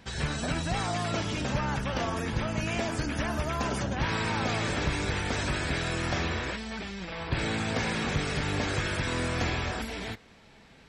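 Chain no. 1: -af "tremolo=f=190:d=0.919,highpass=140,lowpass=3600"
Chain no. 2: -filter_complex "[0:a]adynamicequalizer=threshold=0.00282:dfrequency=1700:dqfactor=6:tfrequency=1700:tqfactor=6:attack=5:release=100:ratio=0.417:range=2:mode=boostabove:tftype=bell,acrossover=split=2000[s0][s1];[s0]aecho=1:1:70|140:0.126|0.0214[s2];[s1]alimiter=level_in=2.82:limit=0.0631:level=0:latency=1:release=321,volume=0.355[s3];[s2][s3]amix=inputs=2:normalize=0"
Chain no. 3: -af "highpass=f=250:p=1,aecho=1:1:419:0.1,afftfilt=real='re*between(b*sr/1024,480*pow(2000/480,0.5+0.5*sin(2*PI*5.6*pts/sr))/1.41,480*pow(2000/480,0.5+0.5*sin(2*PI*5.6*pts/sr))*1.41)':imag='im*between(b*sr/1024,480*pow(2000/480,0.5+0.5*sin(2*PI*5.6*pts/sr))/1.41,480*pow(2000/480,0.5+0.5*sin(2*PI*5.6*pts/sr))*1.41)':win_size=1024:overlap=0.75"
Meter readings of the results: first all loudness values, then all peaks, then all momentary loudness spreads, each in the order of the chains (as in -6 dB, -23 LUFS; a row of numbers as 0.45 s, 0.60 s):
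-36.0 LUFS, -31.0 LUFS, -39.5 LUFS; -17.5 dBFS, -18.5 dBFS, -25.0 dBFS; 5 LU, 5 LU, 6 LU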